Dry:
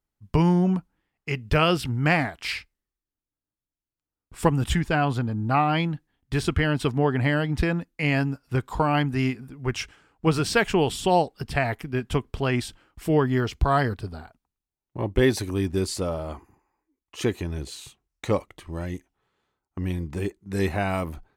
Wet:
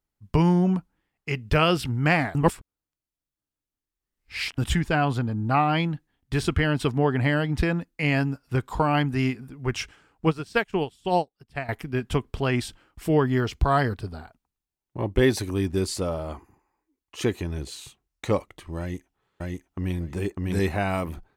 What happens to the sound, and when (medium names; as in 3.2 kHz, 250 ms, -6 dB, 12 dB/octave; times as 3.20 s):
2.35–4.58 s: reverse
10.27–11.69 s: upward expansion 2.5:1, over -34 dBFS
18.80–19.99 s: echo throw 600 ms, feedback 15%, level -0.5 dB